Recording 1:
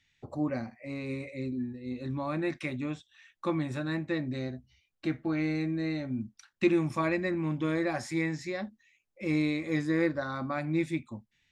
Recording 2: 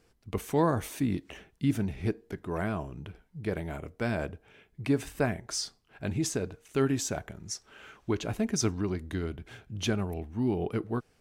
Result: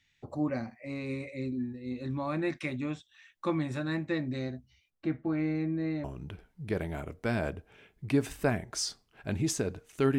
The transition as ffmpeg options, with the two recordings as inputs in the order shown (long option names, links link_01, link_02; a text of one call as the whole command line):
ffmpeg -i cue0.wav -i cue1.wav -filter_complex "[0:a]asettb=1/sr,asplit=3[link_01][link_02][link_03];[link_01]atrim=end=4.904[link_04];[link_02]atrim=start=4.9:end=6.04,asetpts=PTS-STARTPTS,afade=type=in:duration=0.004:curve=qsin,afade=type=out:start_time=1.136:duration=0.004:curve=qsin,lowpass=frequency=1300:poles=1[link_05];[link_03]atrim=start=6.036[link_06];[link_04][link_05]acrossfade=duration=0.004:curve1=hsin:curve2=qsin[link_07];[link_07][link_06]acrossfade=duration=0.004:curve1=qsin:curve2=hsin,apad=whole_dur=10.18,atrim=end=10.18,atrim=end=6.042[link_08];[1:a]atrim=start=2.798:end=6.94[link_09];[link_08][link_09]acrossfade=duration=0.004:curve1=hsin:curve2=hsin" out.wav